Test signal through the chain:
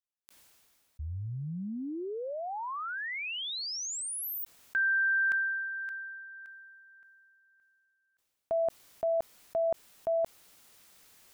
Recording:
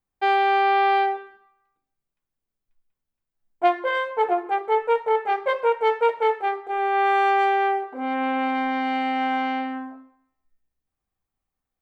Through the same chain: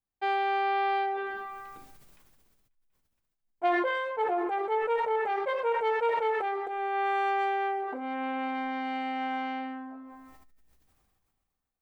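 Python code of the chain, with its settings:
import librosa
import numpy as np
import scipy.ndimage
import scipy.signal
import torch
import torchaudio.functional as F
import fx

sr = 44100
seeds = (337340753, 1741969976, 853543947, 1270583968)

y = fx.sustainer(x, sr, db_per_s=25.0)
y = F.gain(torch.from_numpy(y), -8.5).numpy()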